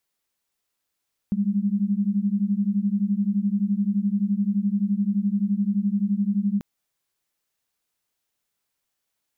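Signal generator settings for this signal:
held notes G3/G#3 sine, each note −23 dBFS 5.29 s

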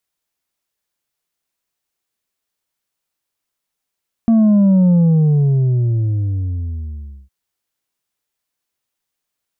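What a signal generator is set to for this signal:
bass drop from 230 Hz, over 3.01 s, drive 4 dB, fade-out 2.40 s, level −9 dB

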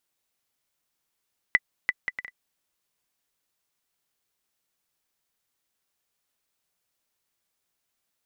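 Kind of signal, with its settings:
bouncing ball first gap 0.34 s, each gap 0.56, 1,990 Hz, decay 40 ms −6 dBFS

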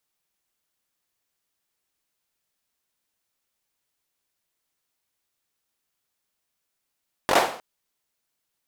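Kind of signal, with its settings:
synth clap length 0.31 s, apart 21 ms, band 680 Hz, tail 0.48 s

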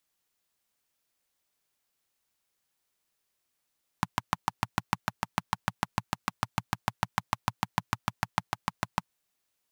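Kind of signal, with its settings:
pulse-train model of a single-cylinder engine, steady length 5.02 s, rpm 800, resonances 120/170/910 Hz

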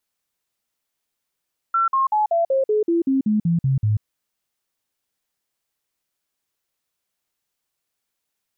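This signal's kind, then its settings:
stepped sweep 1,350 Hz down, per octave 3, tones 12, 0.14 s, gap 0.05 s −15.5 dBFS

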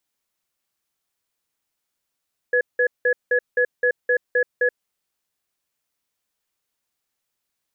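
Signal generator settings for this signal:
tone pair in a cadence 494 Hz, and 1,690 Hz, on 0.08 s, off 0.18 s, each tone −18 dBFS 2.34 s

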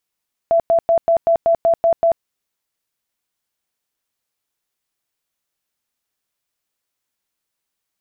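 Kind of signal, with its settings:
tone bursts 669 Hz, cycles 59, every 0.19 s, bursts 9, −10.5 dBFS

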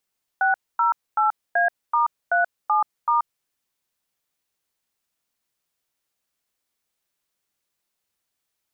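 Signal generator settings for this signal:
touch tones "608A*37*", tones 131 ms, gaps 250 ms, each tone −19 dBFS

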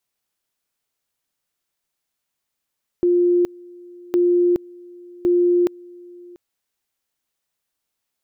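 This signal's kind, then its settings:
tone at two levels in turn 352 Hz −13 dBFS, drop 25 dB, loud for 0.42 s, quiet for 0.69 s, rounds 3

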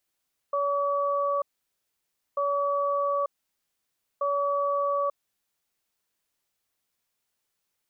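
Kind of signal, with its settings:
tone pair in a cadence 567 Hz, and 1,140 Hz, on 0.89 s, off 0.95 s, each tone −26 dBFS 5.29 s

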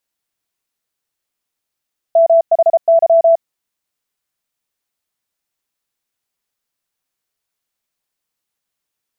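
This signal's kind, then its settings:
Morse code "MHY" 33 words per minute 664 Hz −6 dBFS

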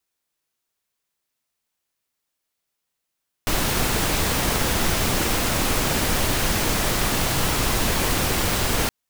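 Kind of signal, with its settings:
noise pink, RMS −21.5 dBFS 5.42 s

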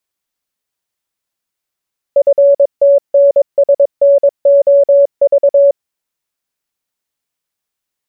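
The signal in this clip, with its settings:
Morse code "FTNSNOV" 22 words per minute 563 Hz −4 dBFS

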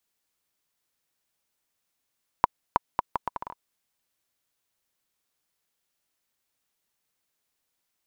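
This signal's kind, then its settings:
bouncing ball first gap 0.32 s, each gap 0.72, 972 Hz, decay 20 ms −3.5 dBFS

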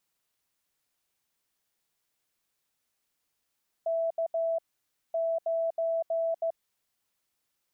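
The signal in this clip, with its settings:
Morse code "K 9" 15 words per minute 660 Hz −25.5 dBFS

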